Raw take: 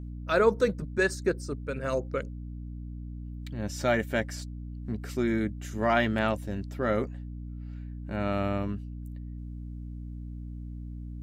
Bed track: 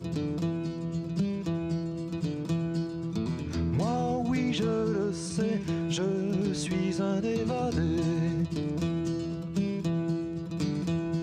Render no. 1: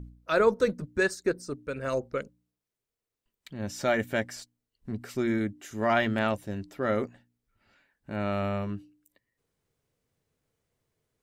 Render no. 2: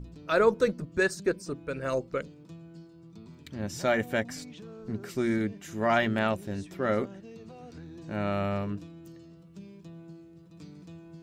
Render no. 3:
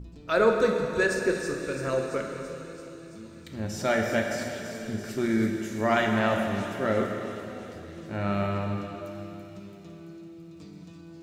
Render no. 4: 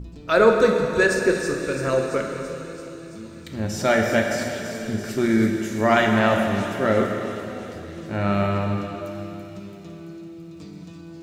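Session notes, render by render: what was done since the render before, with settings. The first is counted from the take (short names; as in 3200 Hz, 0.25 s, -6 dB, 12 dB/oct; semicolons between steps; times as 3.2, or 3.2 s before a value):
de-hum 60 Hz, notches 5
add bed track -17.5 dB
thin delay 0.335 s, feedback 69%, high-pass 3800 Hz, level -7.5 dB; plate-style reverb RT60 3.1 s, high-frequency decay 0.95×, DRR 1.5 dB
gain +6 dB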